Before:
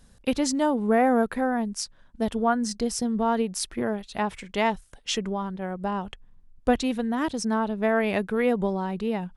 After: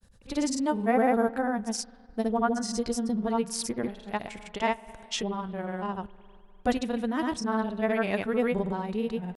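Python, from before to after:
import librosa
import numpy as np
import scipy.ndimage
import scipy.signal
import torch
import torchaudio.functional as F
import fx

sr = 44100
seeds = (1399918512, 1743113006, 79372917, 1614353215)

y = fx.rev_spring(x, sr, rt60_s=2.2, pass_ms=(57,), chirp_ms=30, drr_db=18.5)
y = fx.granulator(y, sr, seeds[0], grain_ms=100.0, per_s=20.0, spray_ms=100.0, spread_st=0)
y = y * librosa.db_to_amplitude(-1.5)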